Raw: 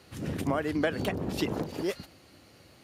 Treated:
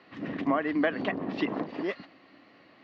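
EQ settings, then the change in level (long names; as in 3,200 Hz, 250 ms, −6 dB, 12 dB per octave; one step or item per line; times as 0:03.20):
high-frequency loss of the air 64 metres
loudspeaker in its box 200–4,400 Hz, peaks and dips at 200 Hz +4 dB, 280 Hz +8 dB, 680 Hz +6 dB, 1,100 Hz +9 dB, 1,900 Hz +10 dB, 2,700 Hz +3 dB
−3.0 dB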